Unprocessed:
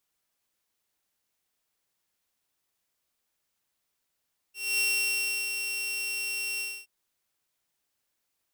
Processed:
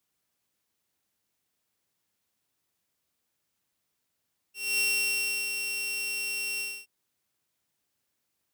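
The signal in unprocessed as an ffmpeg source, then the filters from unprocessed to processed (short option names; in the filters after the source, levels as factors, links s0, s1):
-f lavfi -i "aevalsrc='0.0891*(2*mod(2730*t,1)-1)':d=2.322:s=44100,afade=t=in:d=0.248,afade=t=out:st=0.248:d=0.698:silence=0.473,afade=t=out:st=2.06:d=0.262"
-filter_complex "[0:a]highpass=68,acrossover=split=340[s0][s1];[s0]acontrast=50[s2];[s2][s1]amix=inputs=2:normalize=0"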